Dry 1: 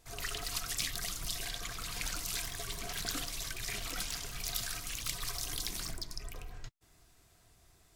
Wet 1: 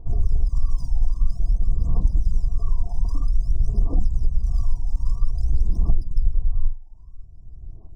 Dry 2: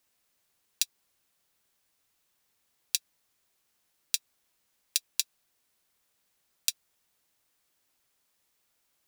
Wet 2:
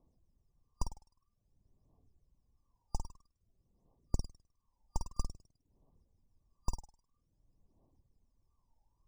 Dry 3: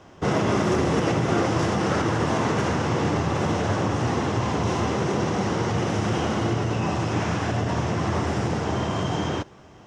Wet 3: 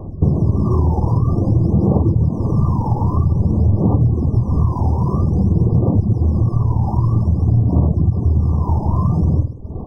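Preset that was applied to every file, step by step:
wavefolder on the positive side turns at −8.5 dBFS
on a send: flutter between parallel walls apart 8.8 metres, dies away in 0.58 s
on the sum: phase shifter 0.51 Hz, delay 1.2 ms, feedback 76%
reverb reduction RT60 0.57 s
spectral tilt −4 dB per octave
in parallel at −0.5 dB: speech leveller within 5 dB 2 s
on the sum: high-frequency loss of the air 70 metres
brick-wall band-stop 1,200–4,800 Hz
downward compressor, threshold −3 dBFS
linearly interpolated sample-rate reduction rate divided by 3×
level −8 dB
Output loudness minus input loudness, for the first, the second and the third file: +10.5, −13.0, +7.5 LU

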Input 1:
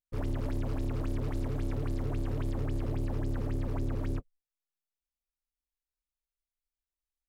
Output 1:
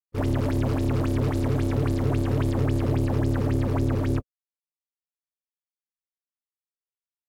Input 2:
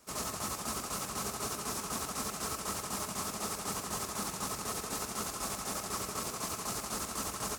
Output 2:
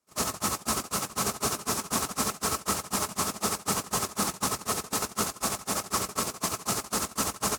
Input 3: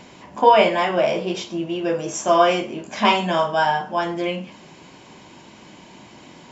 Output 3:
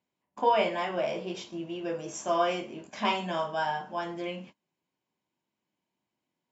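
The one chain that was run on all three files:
high-pass filter 65 Hz 12 dB per octave
noise gate −36 dBFS, range −30 dB
normalise the peak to −12 dBFS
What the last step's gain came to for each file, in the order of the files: +11.5, +10.5, −11.0 decibels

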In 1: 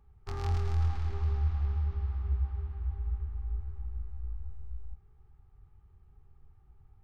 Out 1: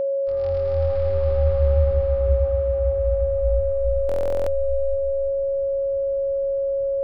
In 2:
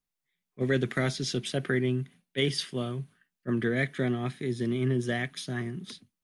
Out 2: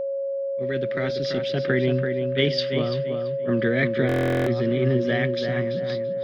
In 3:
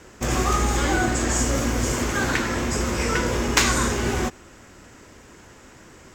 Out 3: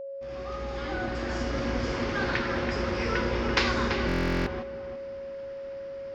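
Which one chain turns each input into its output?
fade in at the beginning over 1.85 s
elliptic low-pass filter 5,000 Hz, stop band 70 dB
feedback echo with a low-pass in the loop 336 ms, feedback 33%, low-pass 2,900 Hz, level −6 dB
steady tone 550 Hz −30 dBFS
buffer that repeats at 0:04.07, samples 1,024, times 16
normalise the peak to −9 dBFS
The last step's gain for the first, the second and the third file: +10.0, +5.5, −5.0 decibels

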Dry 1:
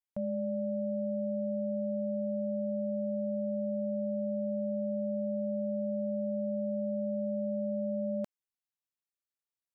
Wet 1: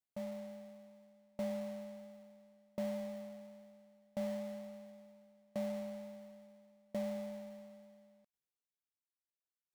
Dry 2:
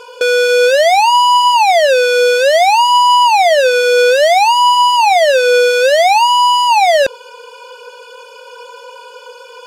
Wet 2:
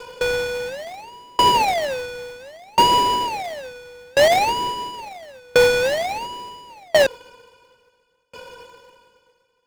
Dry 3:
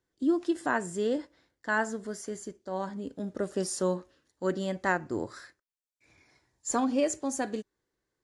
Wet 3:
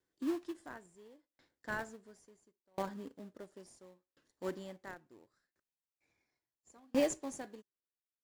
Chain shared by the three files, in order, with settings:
low-shelf EQ 140 Hz −10.5 dB
in parallel at −9.5 dB: sample-rate reduction 1,400 Hz, jitter 20%
on the sum: tremolo with a ramp in dB decaying 0.72 Hz, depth 36 dB
level −2 dB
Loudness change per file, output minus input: −10.0, −10.0, −9.0 LU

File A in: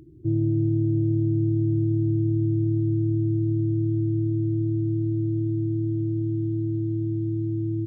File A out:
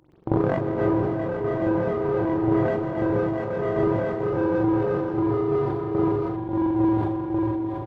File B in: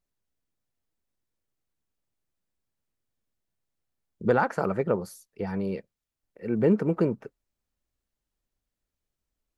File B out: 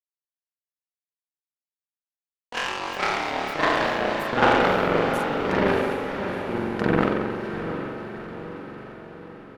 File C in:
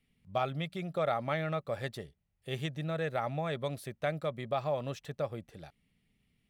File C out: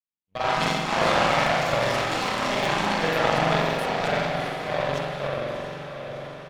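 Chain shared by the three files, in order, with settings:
gate pattern "x.xxx.xxxxx.xxx." 111 BPM −60 dB
downsampling to 32,000 Hz
high-pass filter 48 Hz 6 dB per octave
high-shelf EQ 5,100 Hz −11.5 dB
downward compressor 4 to 1, threshold −34 dBFS
spectral tilt +2.5 dB per octave
spring reverb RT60 2.6 s, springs 43 ms, chirp 25 ms, DRR −8 dB
power curve on the samples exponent 2
feedback delay with all-pass diffusion 696 ms, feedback 56%, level −7 dB
delay with pitch and tempo change per echo 120 ms, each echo +4 semitones, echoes 3
level that may fall only so fast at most 27 dB per second
loudness normalisation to −24 LKFS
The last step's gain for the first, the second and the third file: +17.5, +18.0, +14.0 decibels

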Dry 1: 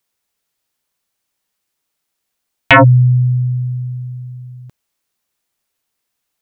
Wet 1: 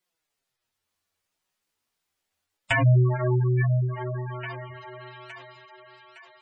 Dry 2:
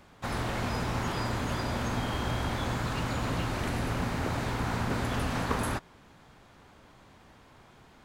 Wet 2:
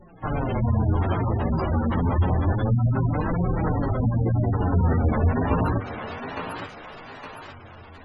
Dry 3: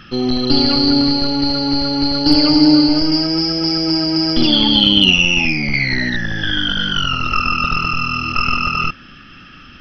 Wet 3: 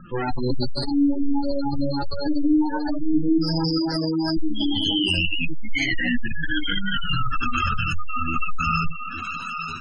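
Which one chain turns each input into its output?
each half-wave held at its own peak
four-comb reverb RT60 1.3 s, combs from 33 ms, DRR 19 dB
chorus effect 0.7 Hz, delay 17.5 ms, depth 5.8 ms
dynamic equaliser 1,700 Hz, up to +4 dB, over −38 dBFS, Q 5
mains-hum notches 50/100/150/200/250 Hz
brickwall limiter −10 dBFS
flanger 0.29 Hz, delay 5.4 ms, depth 8 ms, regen +19%
feedback echo with a high-pass in the loop 863 ms, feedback 49%, high-pass 430 Hz, level −6.5 dB
gate on every frequency bin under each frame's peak −15 dB strong
parametric band 87 Hz +10 dB 0.23 octaves
loudness normalisation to −24 LKFS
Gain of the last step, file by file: −2.5, +10.0, 0.0 decibels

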